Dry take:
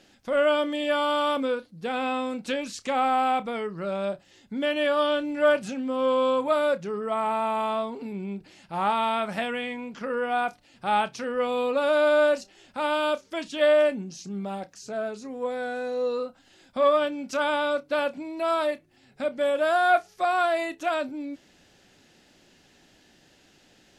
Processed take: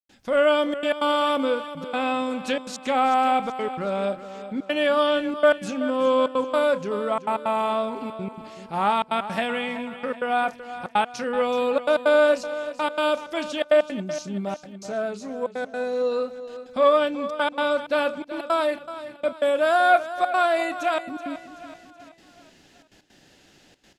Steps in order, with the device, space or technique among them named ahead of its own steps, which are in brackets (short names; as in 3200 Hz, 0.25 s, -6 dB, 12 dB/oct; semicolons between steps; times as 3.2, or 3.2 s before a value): trance gate with a delay (step gate ".xxxxxxx.x" 163 bpm -60 dB; feedback echo 0.378 s, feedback 48%, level -13 dB); gain +3 dB